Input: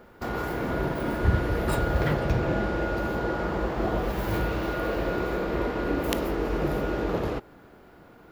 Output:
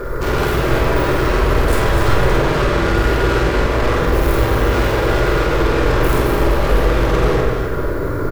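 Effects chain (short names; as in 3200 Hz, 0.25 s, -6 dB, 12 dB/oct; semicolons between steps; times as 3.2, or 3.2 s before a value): low shelf 370 Hz +7.5 dB; in parallel at +2 dB: compressor, threshold -35 dBFS, peak gain reduction 23.5 dB; on the sum: sine folder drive 17 dB, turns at -2 dBFS; fixed phaser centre 770 Hz, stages 6; hard clip -16.5 dBFS, distortion -6 dB; doubler 48 ms -4 dB; on a send: echo with dull and thin repeats by turns 0.125 s, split 1400 Hz, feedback 63%, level -2.5 dB; on the sum: shoebox room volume 510 m³, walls mixed, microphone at 1.2 m; gain -4.5 dB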